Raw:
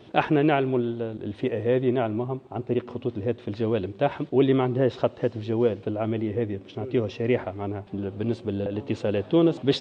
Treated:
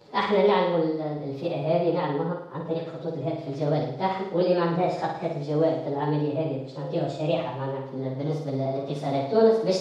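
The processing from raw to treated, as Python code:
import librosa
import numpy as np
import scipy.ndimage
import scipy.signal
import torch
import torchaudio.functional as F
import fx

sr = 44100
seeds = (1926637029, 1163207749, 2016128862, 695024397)

y = fx.pitch_bins(x, sr, semitones=5.0)
y = fx.room_flutter(y, sr, wall_m=9.2, rt60_s=0.7)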